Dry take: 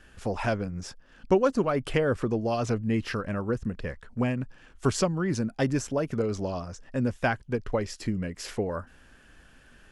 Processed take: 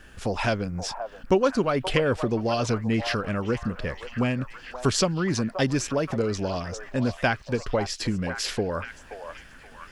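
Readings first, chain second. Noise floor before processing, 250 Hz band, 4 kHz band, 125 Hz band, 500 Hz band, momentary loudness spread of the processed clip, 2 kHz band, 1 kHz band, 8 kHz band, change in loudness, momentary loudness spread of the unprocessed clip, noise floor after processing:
-56 dBFS, +2.0 dB, +9.0 dB, +2.0 dB, +2.0 dB, 10 LU, +4.5 dB, +3.5 dB, +6.0 dB, +2.5 dB, 9 LU, -48 dBFS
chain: delay with a stepping band-pass 0.527 s, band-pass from 810 Hz, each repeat 0.7 oct, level -7 dB; in parallel at -2 dB: compressor, threshold -35 dBFS, peak gain reduction 17 dB; on the sum: dynamic EQ 3900 Hz, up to +8 dB, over -50 dBFS, Q 0.95; requantised 12-bit, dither none

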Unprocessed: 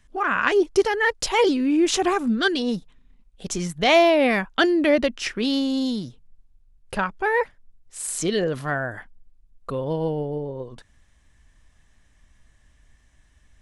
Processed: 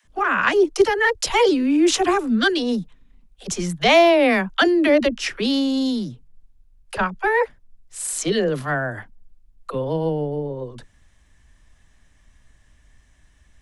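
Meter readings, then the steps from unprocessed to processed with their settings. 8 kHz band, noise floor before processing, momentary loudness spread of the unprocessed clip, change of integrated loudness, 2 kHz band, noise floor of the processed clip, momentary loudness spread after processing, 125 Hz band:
+2.5 dB, -59 dBFS, 14 LU, +2.5 dB, +2.5 dB, -57 dBFS, 14 LU, +2.5 dB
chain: dispersion lows, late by 50 ms, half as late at 340 Hz; gain +2.5 dB

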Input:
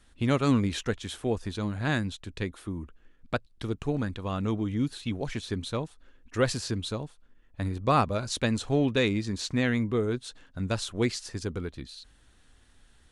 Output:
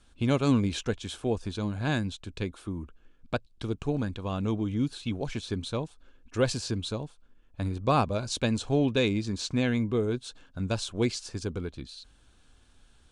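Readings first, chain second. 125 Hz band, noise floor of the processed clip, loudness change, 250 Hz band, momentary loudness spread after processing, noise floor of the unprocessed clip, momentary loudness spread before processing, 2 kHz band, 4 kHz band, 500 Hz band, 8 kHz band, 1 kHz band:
0.0 dB, -60 dBFS, -0.5 dB, 0.0 dB, 12 LU, -60 dBFS, 13 LU, -3.0 dB, 0.0 dB, 0.0 dB, -0.5 dB, -1.5 dB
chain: notch 1900 Hz, Q 5.1; dynamic EQ 1300 Hz, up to -5 dB, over -51 dBFS, Q 4.5; LPF 9700 Hz 24 dB/oct

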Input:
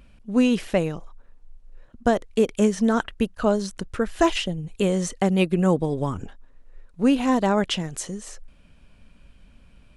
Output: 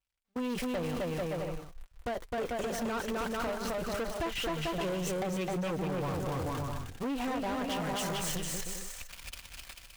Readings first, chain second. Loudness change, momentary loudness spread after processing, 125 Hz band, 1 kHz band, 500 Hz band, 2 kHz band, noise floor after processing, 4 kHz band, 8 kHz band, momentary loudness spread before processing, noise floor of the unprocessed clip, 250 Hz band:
-11.5 dB, 10 LU, -9.0 dB, -7.5 dB, -10.0 dB, -6.5 dB, -58 dBFS, -6.5 dB, -4.0 dB, 11 LU, -53 dBFS, -13.0 dB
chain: switching spikes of -20.5 dBFS; AGC gain up to 13 dB; LPF 1600 Hz 6 dB/oct; bell 250 Hz -7.5 dB 1.8 oct; notch comb 210 Hz; gate -32 dBFS, range -40 dB; bouncing-ball echo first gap 0.26 s, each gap 0.7×, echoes 5; compressor, threshold -24 dBFS, peak gain reduction 11 dB; soft clip -30 dBFS, distortion -8 dB

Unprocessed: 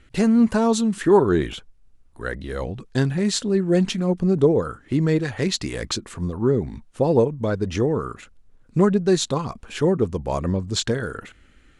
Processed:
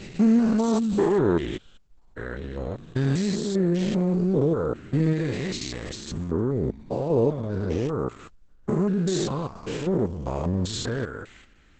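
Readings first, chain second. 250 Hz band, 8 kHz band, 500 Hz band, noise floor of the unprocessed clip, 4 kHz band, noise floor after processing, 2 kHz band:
-2.5 dB, -7.0 dB, -4.5 dB, -55 dBFS, -7.0 dB, -54 dBFS, -6.0 dB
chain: stepped spectrum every 0.2 s; Opus 10 kbps 48000 Hz

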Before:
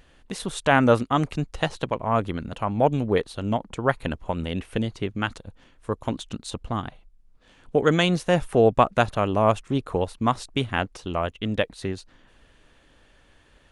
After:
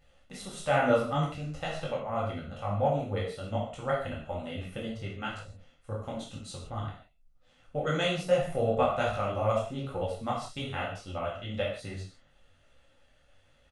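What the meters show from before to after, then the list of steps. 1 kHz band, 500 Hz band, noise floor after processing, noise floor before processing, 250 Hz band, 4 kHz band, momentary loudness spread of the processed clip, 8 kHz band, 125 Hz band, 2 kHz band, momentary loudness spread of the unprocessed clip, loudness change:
-7.5 dB, -6.0 dB, -64 dBFS, -58 dBFS, -10.5 dB, -7.0 dB, 14 LU, -7.0 dB, -7.0 dB, -8.0 dB, 12 LU, -7.0 dB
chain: comb 1.5 ms, depth 47%; non-linear reverb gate 0.19 s falling, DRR -2.5 dB; detuned doubles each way 38 cents; gain -9 dB

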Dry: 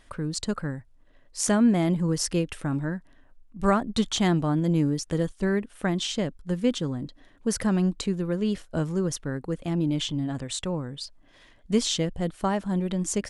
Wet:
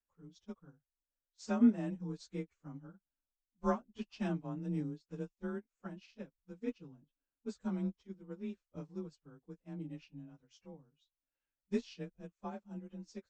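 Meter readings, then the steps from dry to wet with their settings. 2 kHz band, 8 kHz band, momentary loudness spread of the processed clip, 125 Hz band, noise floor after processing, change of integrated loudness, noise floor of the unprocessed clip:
-18.0 dB, under -30 dB, 18 LU, -17.5 dB, under -85 dBFS, -13.0 dB, -56 dBFS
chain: inharmonic rescaling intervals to 92%; upward expander 2.5:1, over -39 dBFS; gain -4.5 dB

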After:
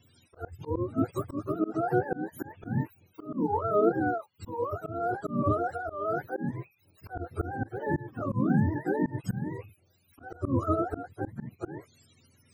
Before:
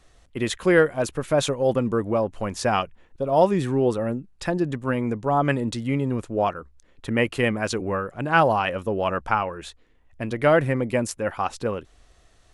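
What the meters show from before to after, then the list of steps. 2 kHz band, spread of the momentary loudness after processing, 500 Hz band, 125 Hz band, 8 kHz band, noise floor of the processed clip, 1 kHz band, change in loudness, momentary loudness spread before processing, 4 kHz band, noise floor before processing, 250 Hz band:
-13.0 dB, 15 LU, -9.5 dB, -5.0 dB, under -20 dB, -67 dBFS, -8.0 dB, -7.5 dB, 11 LU, under -25 dB, -58 dBFS, -5.0 dB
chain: spectrum mirrored in octaves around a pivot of 410 Hz; auto swell 0.231 s; gain -1.5 dB

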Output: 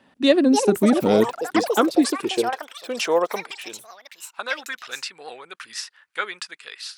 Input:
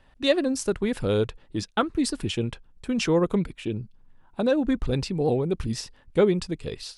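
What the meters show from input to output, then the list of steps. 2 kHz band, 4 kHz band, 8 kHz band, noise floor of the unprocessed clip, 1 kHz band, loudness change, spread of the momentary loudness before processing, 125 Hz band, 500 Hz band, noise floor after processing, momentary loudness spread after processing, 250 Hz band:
+7.0 dB, +4.0 dB, +5.0 dB, -58 dBFS, +8.0 dB, +4.5 dB, 11 LU, -7.5 dB, +3.0 dB, -59 dBFS, 19 LU, +3.5 dB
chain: high-pass sweep 220 Hz -> 1500 Hz, 1.09–4.73; echoes that change speed 0.378 s, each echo +7 st, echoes 3, each echo -6 dB; gain +3 dB

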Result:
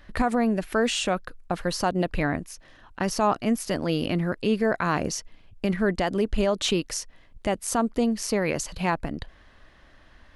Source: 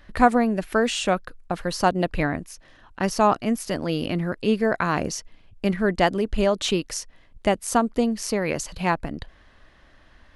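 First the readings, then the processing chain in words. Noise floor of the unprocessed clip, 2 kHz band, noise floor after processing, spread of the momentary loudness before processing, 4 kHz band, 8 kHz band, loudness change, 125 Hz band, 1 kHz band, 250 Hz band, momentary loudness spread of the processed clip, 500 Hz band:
-54 dBFS, -2.5 dB, -54 dBFS, 11 LU, -0.5 dB, 0.0 dB, -2.5 dB, -1.0 dB, -4.5 dB, -1.5 dB, 9 LU, -2.5 dB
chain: limiter -13 dBFS, peak gain reduction 10 dB

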